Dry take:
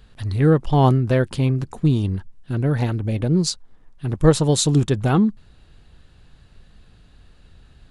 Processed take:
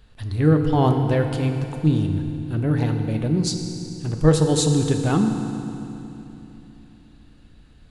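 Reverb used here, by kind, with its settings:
feedback delay network reverb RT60 3 s, low-frequency decay 1.3×, high-frequency decay 0.9×, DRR 4.5 dB
level −3 dB

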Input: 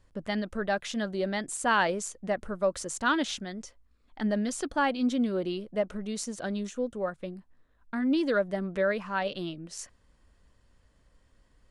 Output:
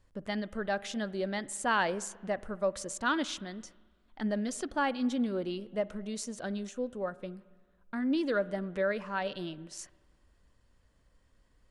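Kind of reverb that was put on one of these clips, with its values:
spring reverb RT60 1.5 s, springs 45/55 ms, chirp 75 ms, DRR 19 dB
level −3.5 dB

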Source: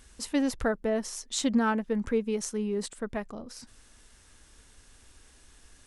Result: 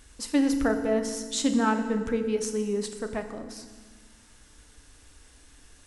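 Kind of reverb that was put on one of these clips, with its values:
feedback delay network reverb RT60 1.5 s, low-frequency decay 1.45×, high-frequency decay 0.9×, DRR 6 dB
level +1 dB

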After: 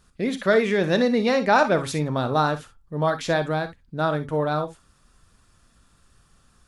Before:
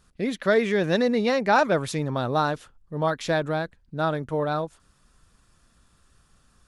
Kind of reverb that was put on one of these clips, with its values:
reverb whose tail is shaped and stops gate 80 ms rising, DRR 9.5 dB
level +1.5 dB

